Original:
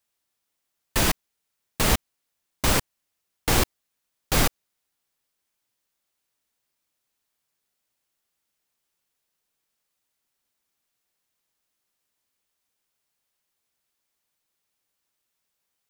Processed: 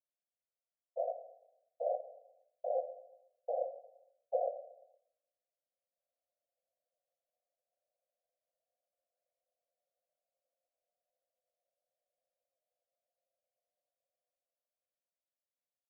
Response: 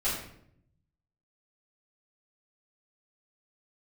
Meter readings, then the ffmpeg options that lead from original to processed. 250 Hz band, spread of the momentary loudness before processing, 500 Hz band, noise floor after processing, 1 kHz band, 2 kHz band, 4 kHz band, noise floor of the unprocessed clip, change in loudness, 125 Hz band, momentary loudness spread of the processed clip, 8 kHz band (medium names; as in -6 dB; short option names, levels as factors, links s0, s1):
under -40 dB, 7 LU, -3.5 dB, under -85 dBFS, -12.0 dB, under -40 dB, under -40 dB, -80 dBFS, -15.0 dB, under -40 dB, 17 LU, under -40 dB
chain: -filter_complex "[0:a]agate=range=0.224:threshold=0.0501:ratio=16:detection=peak,dynaudnorm=f=110:g=31:m=5.31,asoftclip=type=hard:threshold=0.112,flanger=delay=8.5:depth=4.4:regen=-85:speed=0.55:shape=sinusoidal,asplit=2[s0][s1];[s1]aeval=exprs='0.1*sin(PI/2*2*val(0)/0.1)':c=same,volume=0.447[s2];[s0][s2]amix=inputs=2:normalize=0,asuperpass=centerf=600:order=12:qfactor=2.4,aecho=1:1:116|232|348|464:0.126|0.0629|0.0315|0.0157,asplit=2[s3][s4];[1:a]atrim=start_sample=2205[s5];[s4][s5]afir=irnorm=-1:irlink=0,volume=0.158[s6];[s3][s6]amix=inputs=2:normalize=0,volume=0.891"